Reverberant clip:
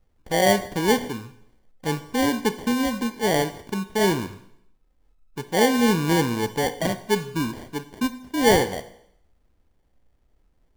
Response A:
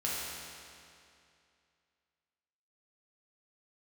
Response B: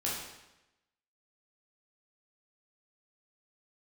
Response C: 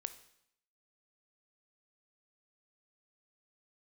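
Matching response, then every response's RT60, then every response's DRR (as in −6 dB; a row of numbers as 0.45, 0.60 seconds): C; 2.5, 0.95, 0.70 seconds; −7.0, −6.0, 11.0 decibels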